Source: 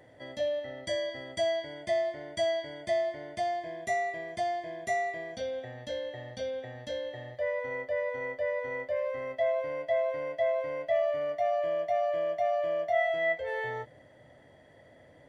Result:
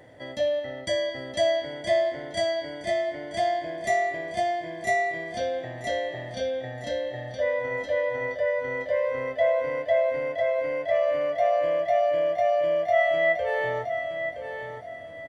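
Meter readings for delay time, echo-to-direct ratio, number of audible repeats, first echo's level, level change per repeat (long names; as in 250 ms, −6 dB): 969 ms, −7.5 dB, 3, −8.0 dB, −10.5 dB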